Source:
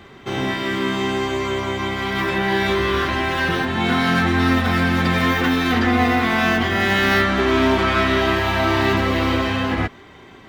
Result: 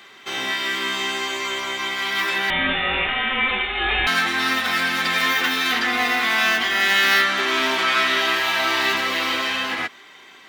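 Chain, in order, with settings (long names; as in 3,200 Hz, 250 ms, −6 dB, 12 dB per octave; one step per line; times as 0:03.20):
high-pass filter 210 Hz 12 dB per octave
tilt shelving filter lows −9.5 dB
0:02.50–0:04.07: voice inversion scrambler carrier 3,900 Hz
level −3 dB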